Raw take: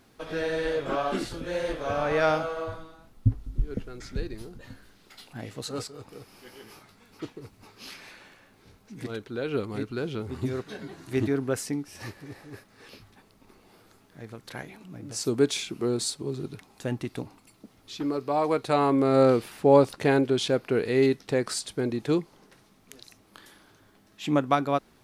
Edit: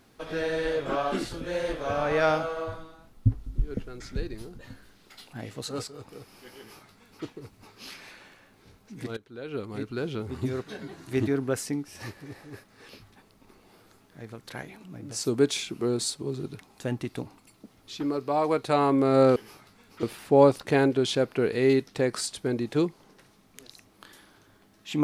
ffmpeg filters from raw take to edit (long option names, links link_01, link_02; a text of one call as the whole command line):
ffmpeg -i in.wav -filter_complex "[0:a]asplit=4[link_01][link_02][link_03][link_04];[link_01]atrim=end=9.17,asetpts=PTS-STARTPTS,afade=type=out:start_time=9.166:duration=0.004:curve=hsin:silence=0.16788[link_05];[link_02]atrim=start=9.17:end=19.362,asetpts=PTS-STARTPTS,afade=type=in:duration=0.84:silence=0.16788[link_06];[link_03]atrim=start=6.578:end=7.252[link_07];[link_04]atrim=start=19.358[link_08];[link_05][link_06]concat=n=2:v=0:a=1[link_09];[link_09][link_07]acrossfade=duration=0.004:curve1=hsin:curve2=hsin[link_10];[link_10][link_08]acrossfade=duration=0.004:curve1=hsin:curve2=hsin" out.wav